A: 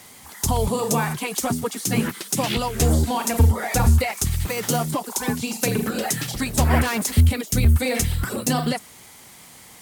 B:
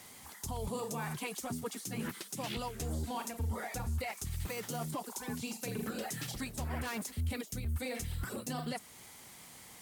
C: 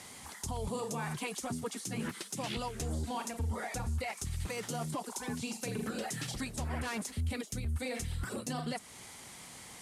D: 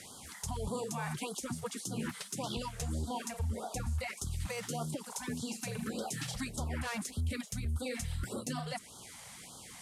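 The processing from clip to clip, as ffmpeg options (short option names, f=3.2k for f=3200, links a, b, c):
-af "areverse,acompressor=threshold=-25dB:ratio=5,areverse,alimiter=limit=-20.5dB:level=0:latency=1:release=273,volume=-7.5dB"
-filter_complex "[0:a]lowpass=f=11k:w=0.5412,lowpass=f=11k:w=1.3066,asplit=2[a][b];[b]acompressor=threshold=-43dB:ratio=6,volume=-0.5dB[c];[a][c]amix=inputs=2:normalize=0,volume=-1.5dB"
-af "afftfilt=real='re*(1-between(b*sr/1024,280*pow(2200/280,0.5+0.5*sin(2*PI*1.7*pts/sr))/1.41,280*pow(2200/280,0.5+0.5*sin(2*PI*1.7*pts/sr))*1.41))':imag='im*(1-between(b*sr/1024,280*pow(2200/280,0.5+0.5*sin(2*PI*1.7*pts/sr))/1.41,280*pow(2200/280,0.5+0.5*sin(2*PI*1.7*pts/sr))*1.41))':win_size=1024:overlap=0.75"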